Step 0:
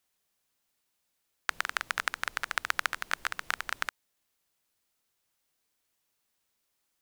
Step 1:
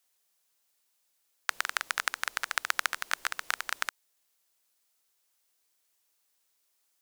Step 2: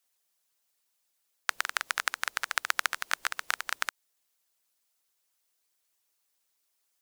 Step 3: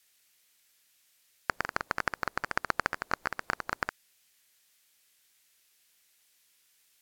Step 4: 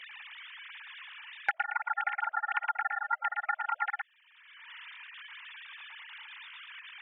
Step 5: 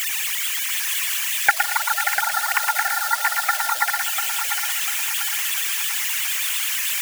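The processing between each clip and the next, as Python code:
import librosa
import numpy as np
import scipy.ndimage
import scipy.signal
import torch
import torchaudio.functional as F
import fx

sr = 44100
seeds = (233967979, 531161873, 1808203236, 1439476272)

y1 = fx.bass_treble(x, sr, bass_db=-13, treble_db=5)
y2 = fx.hpss(y1, sr, part='percussive', gain_db=9)
y2 = y2 * 10.0 ** (-8.0 / 20.0)
y3 = scipy.ndimage.median_filter(y2, 15, mode='constant')
y3 = fx.wow_flutter(y3, sr, seeds[0], rate_hz=2.1, depth_cents=94.0)
y3 = fx.dmg_noise_band(y3, sr, seeds[1], low_hz=1600.0, high_hz=16000.0, level_db=-70.0)
y3 = y3 * 10.0 ** (2.0 / 20.0)
y4 = fx.sine_speech(y3, sr)
y4 = y4 + 10.0 ** (-5.5 / 20.0) * np.pad(y4, (int(114 * sr / 1000.0), 0))[:len(y4)]
y4 = fx.band_squash(y4, sr, depth_pct=100)
y5 = y4 + 0.5 * 10.0 ** (-25.5 / 20.0) * np.diff(np.sign(y4), prepend=np.sign(y4[:1]))
y5 = fx.echo_feedback(y5, sr, ms=695, feedback_pct=40, wet_db=-7)
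y5 = fx.hpss(y5, sr, part='percussive', gain_db=7)
y5 = y5 * 10.0 ** (6.0 / 20.0)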